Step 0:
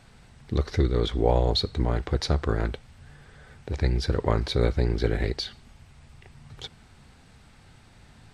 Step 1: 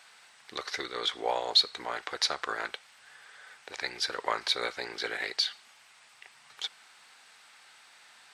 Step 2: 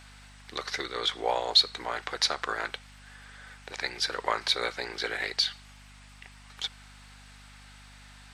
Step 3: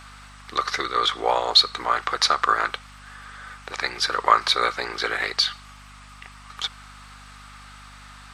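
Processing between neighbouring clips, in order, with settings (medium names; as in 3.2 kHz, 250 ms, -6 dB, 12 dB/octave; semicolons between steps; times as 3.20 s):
high-pass 1.1 kHz 12 dB/octave; trim +4.5 dB
hum 50 Hz, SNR 20 dB; trim +2 dB
peaking EQ 1.2 kHz +12.5 dB 0.38 oct; trim +5 dB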